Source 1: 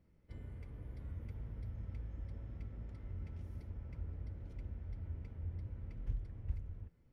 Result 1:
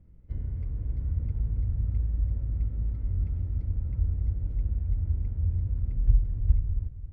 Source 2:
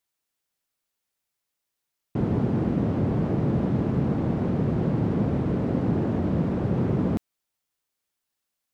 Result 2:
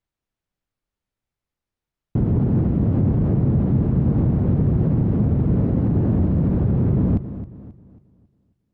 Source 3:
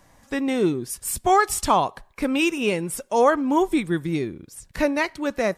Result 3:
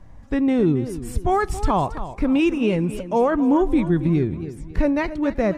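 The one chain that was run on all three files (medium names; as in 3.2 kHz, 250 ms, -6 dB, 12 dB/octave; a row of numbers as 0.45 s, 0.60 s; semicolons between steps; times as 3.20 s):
RIAA curve playback; peak limiter -10 dBFS; modulated delay 271 ms, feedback 38%, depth 128 cents, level -13 dB; peak normalisation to -9 dBFS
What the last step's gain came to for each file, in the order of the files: +1.0 dB, -1.0 dB, -1.0 dB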